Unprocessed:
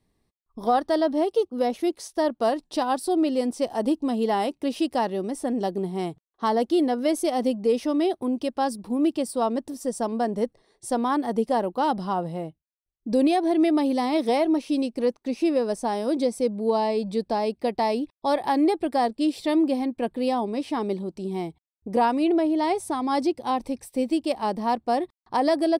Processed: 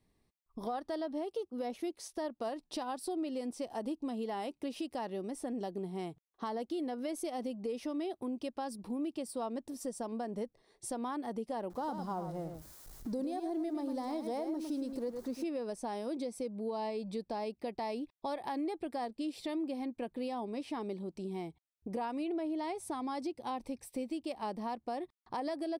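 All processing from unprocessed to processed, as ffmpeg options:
-filter_complex "[0:a]asettb=1/sr,asplit=3[s0][s1][s2];[s0]atrim=end=11.704[s3];[s1]atrim=start=11.7:end=15.44,asetpts=PTS-STARTPTS,afade=t=in:d=0.004:c=qsin,afade=t=out:st=3.736:d=0.004:c=qsin,aeval=exprs='val(0)+0.5*0.0112*sgn(val(0))':c=same,equalizer=f=2600:w=1.6:g=-13,aecho=1:1:105:0.355,atrim=end_sample=164934[s4];[s2]atrim=start=15.436[s5];[s3][s4]acrossfade=d=0.004:c1=hsin:c2=qsin[s6];[s6][s5]acrossfade=d=0.004:c1=qsin:c2=hsin,equalizer=f=2400:t=o:w=0.41:g=2.5,alimiter=limit=0.15:level=0:latency=1:release=108,acompressor=threshold=0.0126:ratio=2,volume=0.668"

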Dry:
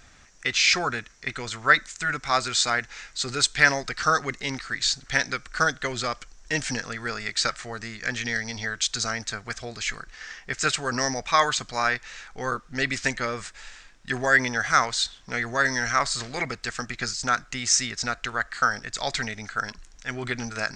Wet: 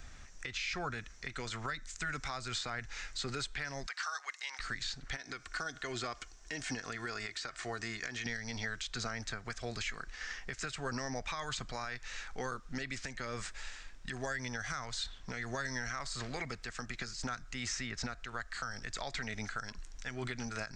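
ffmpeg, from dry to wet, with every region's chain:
-filter_complex "[0:a]asettb=1/sr,asplit=3[s0][s1][s2];[s0]atrim=end=3.864[s3];[s1]atrim=start=3.86:end=4.59,asetpts=PTS-STARTPTS,afade=t=in:d=0.004:c=qsin,afade=t=out:st=0.726:d=0.004:c=qsin,highpass=f=840:w=0.5412,highpass=f=840:w=1.3066,bandreject=f=1300:w=21[s4];[s2]atrim=start=4.586[s5];[s3][s4]acrossfade=d=0.004:c1=hsin:c2=qsin[s6];[s6][s5]acrossfade=d=0.004:c1=qsin:c2=hsin,asettb=1/sr,asplit=3[s7][s8][s9];[s7]atrim=end=5.164[s10];[s8]atrim=start=5.16:end=8.26,asetpts=PTS-STARTPTS,afade=t=in:d=0.004:c=qsin,afade=t=out:st=3.096:d=0.004:c=qsin,highpass=f=170:p=1,aecho=1:1:2.8:0.38,atrim=end_sample=136710,acompressor=threshold=0.0282:ratio=2:attack=3.2:release=140:knee=1:detection=peak[s11];[s9]atrim=start=8.256[s12];[s10][s11]acrossfade=d=0.004:c1=hsin:c2=qsin[s13];[s13][s12]acrossfade=d=0.004:c1=qsin:c2=hsin,lowshelf=f=80:g=11.5,acrossover=split=170|3200[s14][s15][s16];[s14]acompressor=threshold=0.0112:ratio=4[s17];[s15]acompressor=threshold=0.0282:ratio=4[s18];[s16]acompressor=threshold=0.01:ratio=4[s19];[s17][s18][s19]amix=inputs=3:normalize=0,alimiter=limit=0.0631:level=0:latency=1:release=195,volume=0.708"

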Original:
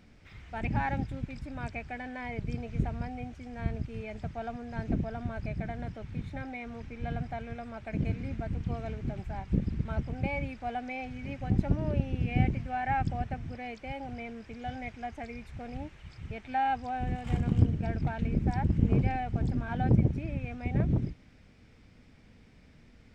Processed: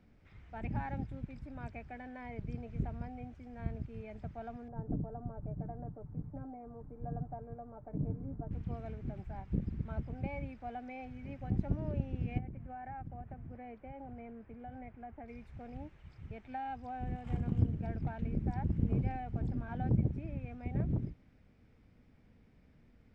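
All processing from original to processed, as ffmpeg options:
-filter_complex "[0:a]asettb=1/sr,asplit=3[s0][s1][s2];[s0]atrim=end=4.684[s3];[s1]atrim=start=4.68:end=8.51,asetpts=PTS-STARTPTS,afade=t=in:d=0.004:c=qsin,afade=t=out:st=3.826:d=0.004:c=qsin,lowpass=f=1100:w=0.5412,lowpass=f=1100:w=1.3066,aecho=1:1:6.8:0.47,atrim=end_sample=168903[s4];[s2]atrim=start=8.506[s5];[s3][s4]acrossfade=d=0.004:c1=hsin:c2=qsin[s6];[s6][s5]acrossfade=d=0.004:c1=qsin:c2=hsin,asettb=1/sr,asplit=3[s7][s8][s9];[s7]atrim=end=12.384[s10];[s8]atrim=start=12.38:end=15.28,asetpts=PTS-STARTPTS,afade=t=in:d=0.004:c=qsin,afade=t=out:st=2.896:d=0.004:c=qsin,lowpass=1800,acompressor=threshold=0.0158:ratio=3:attack=3.2:release=140:knee=1:detection=peak[s11];[s9]atrim=start=15.276[s12];[s10][s11]acrossfade=d=0.004:c1=hsin:c2=qsin[s13];[s13][s12]acrossfade=d=0.004:c1=qsin:c2=hsin,highshelf=f=2300:g=-11.5,acrossover=split=260|3000[s14][s15][s16];[s15]acompressor=threshold=0.0251:ratio=6[s17];[s14][s17][s16]amix=inputs=3:normalize=0,volume=0.501"

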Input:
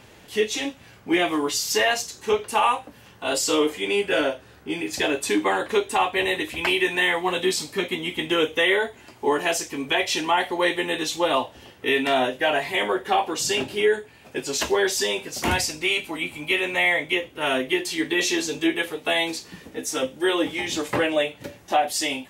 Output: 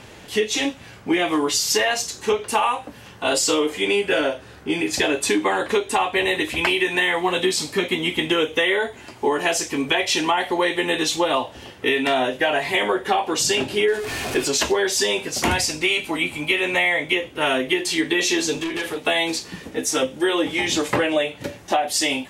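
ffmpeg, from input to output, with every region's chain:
-filter_complex "[0:a]asettb=1/sr,asplit=3[s0][s1][s2];[s0]atrim=end=13.884[s3];[s1]atrim=start=13.88:end=14.48,asetpts=PTS-STARTPTS,afade=t=in:d=0.004:c=qsin,afade=t=out:st=0.596:d=0.004:c=qsin,aeval=exprs='val(0)+0.5*0.0335*sgn(val(0))':c=same,aecho=1:1:2.8:0.34,atrim=end_sample=26460[s4];[s2]atrim=start=14.476[s5];[s3][s4]acrossfade=d=0.004:c1=hsin:c2=qsin[s6];[s6][s5]acrossfade=d=0.004:c1=qsin:c2=hsin,asettb=1/sr,asplit=3[s7][s8][s9];[s7]atrim=end=18.534[s10];[s8]atrim=start=18.53:end=18.98,asetpts=PTS-STARTPTS,afade=t=in:d=0.004:c=qsin,afade=t=out:st=0.446:d=0.004:c=qsin,acompressor=threshold=0.0562:ratio=6:attack=3.2:release=140:knee=1:detection=peak,asoftclip=type=hard:threshold=0.0355,asplit=2[s11][s12];[s12]adelay=44,volume=0.237[s13];[s11][s13]amix=inputs=2:normalize=0,atrim=end_sample=19845[s14];[s9]atrim=start=18.976[s15];[s10][s14]acrossfade=d=0.004:c1=hsin:c2=qsin[s16];[s16][s15]acrossfade=d=0.004:c1=qsin:c2=hsin,lowpass=12000,acompressor=threshold=0.0708:ratio=6,volume=2.11"

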